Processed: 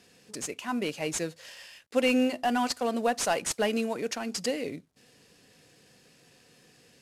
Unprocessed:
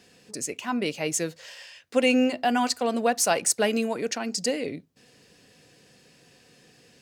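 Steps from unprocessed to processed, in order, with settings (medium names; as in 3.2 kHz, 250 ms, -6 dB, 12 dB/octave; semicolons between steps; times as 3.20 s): CVSD coder 64 kbps; trim -3 dB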